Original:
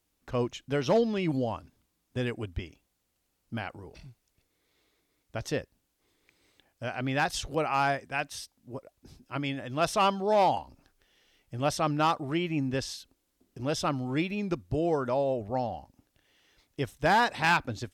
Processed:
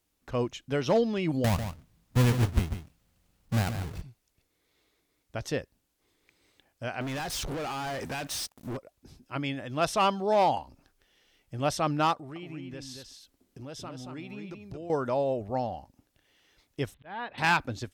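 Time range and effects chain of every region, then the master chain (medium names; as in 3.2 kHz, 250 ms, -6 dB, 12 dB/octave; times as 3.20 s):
1.44–4.02 s: square wave that keeps the level + resonant low shelf 230 Hz +6.5 dB, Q 1.5 + delay 146 ms -9.5 dB
7.01–8.77 s: compression 8:1, threshold -39 dBFS + waveshaping leveller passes 5
12.13–14.90 s: compression 3:1, threshold -42 dBFS + delay 228 ms -5.5 dB
16.94–17.38 s: slow attack 757 ms + steep low-pass 3.7 kHz 48 dB/octave
whole clip: none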